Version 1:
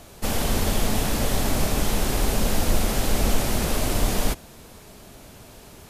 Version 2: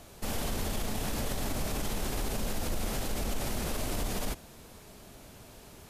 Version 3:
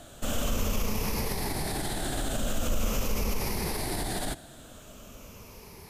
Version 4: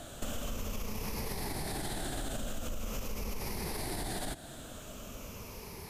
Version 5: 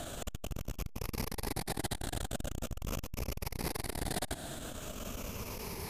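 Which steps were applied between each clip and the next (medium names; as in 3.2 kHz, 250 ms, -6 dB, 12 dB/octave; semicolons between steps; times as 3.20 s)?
peak limiter -18 dBFS, peak gain reduction 9.5 dB; trim -5.5 dB
drifting ripple filter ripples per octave 0.83, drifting -0.44 Hz, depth 9 dB; trim +2 dB
compression 10:1, threshold -35 dBFS, peak gain reduction 13 dB; trim +2 dB
transformer saturation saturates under 300 Hz; trim +5.5 dB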